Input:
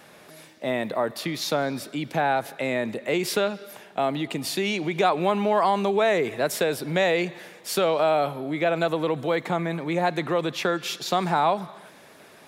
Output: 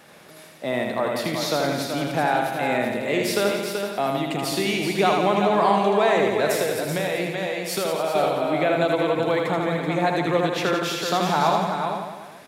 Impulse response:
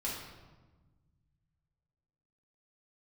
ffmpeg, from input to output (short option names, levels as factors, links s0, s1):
-filter_complex "[0:a]asplit=2[s0][s1];[s1]aecho=0:1:381:0.473[s2];[s0][s2]amix=inputs=2:normalize=0,asettb=1/sr,asplit=3[s3][s4][s5];[s3]atrim=end=6.554[s6];[s4]atrim=start=6.55:end=8.15,asetpts=PTS-STARTPTS,afade=t=in:d=0.004:c=qsin,afade=t=out:st=1.596:d=0.004:c=qsin,acompressor=threshold=0.0708:ratio=6[s7];[s5]atrim=start=8.146[s8];[s6][s7]acrossfade=d=0.004:c1=hsin:c2=qsin[s9];[s9][s8]acrossfade=d=0.004:c1=qsin:c2=hsin,asplit=2[s10][s11];[s11]aecho=0:1:80|168|264.8|371.3|488.4:0.631|0.398|0.251|0.158|0.1[s12];[s10][s12]amix=inputs=2:normalize=0"